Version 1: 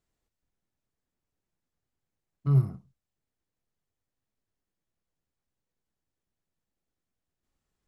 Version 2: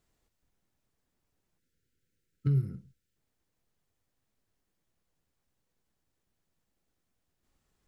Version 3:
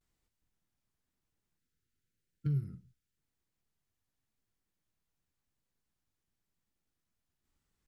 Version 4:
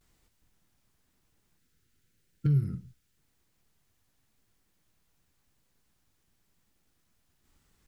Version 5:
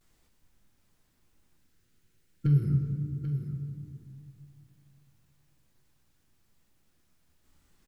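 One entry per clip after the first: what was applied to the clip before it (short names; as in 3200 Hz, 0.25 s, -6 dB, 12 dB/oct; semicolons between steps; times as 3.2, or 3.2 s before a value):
compressor 4:1, threshold -32 dBFS, peak gain reduction 12.5 dB; spectral gain 1.59–3.16, 540–1300 Hz -21 dB; gain +6 dB
bell 540 Hz -5.5 dB 1.2 oct; vibrato 0.95 Hz 98 cents; gain -5 dB
in parallel at -1.5 dB: compressor, threshold -40 dBFS, peak gain reduction 11 dB; on the sum: limiter -26 dBFS, peak gain reduction 4 dB; gain +7.5 dB
echo 0.788 s -10 dB; on a send at -3.5 dB: reverb RT60 2.3 s, pre-delay 3 ms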